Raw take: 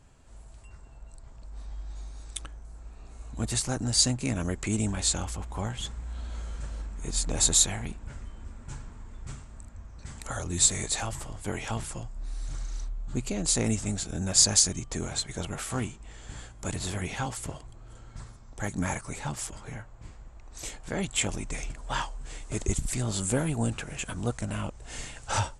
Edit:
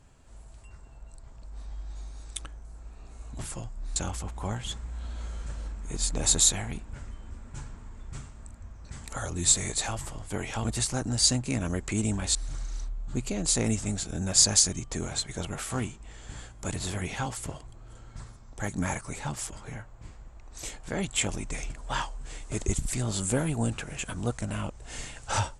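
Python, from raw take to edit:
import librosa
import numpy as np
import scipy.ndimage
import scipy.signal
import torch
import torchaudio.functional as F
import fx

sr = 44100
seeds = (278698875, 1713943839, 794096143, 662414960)

y = fx.edit(x, sr, fx.swap(start_s=3.39, length_s=1.71, other_s=11.78, other_length_s=0.57), tone=tone)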